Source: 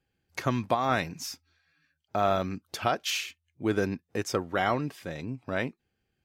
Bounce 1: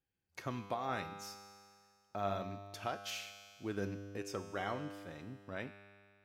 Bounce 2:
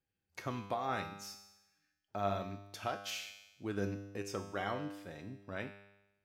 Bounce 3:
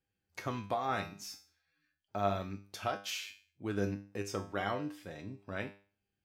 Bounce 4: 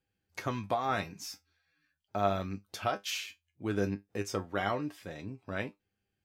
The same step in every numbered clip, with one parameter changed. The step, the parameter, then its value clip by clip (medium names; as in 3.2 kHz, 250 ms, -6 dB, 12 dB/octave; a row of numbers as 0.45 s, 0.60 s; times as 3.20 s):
feedback comb, decay: 2.1 s, 0.97 s, 0.4 s, 0.16 s